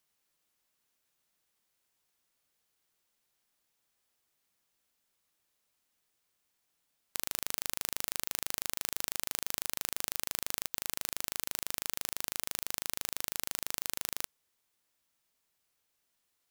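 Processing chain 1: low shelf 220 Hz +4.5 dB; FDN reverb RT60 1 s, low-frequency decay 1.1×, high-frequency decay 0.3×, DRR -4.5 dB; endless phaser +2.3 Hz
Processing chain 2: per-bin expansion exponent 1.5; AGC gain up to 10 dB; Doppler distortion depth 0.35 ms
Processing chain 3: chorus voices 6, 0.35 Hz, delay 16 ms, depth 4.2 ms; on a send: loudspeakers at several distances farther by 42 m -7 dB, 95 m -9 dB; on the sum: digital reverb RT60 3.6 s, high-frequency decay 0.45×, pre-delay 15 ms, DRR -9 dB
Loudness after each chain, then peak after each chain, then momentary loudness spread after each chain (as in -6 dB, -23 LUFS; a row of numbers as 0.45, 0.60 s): -35.0, -34.5, -31.5 LUFS; -11.0, -2.0, -9.0 dBFS; 1, 4, 5 LU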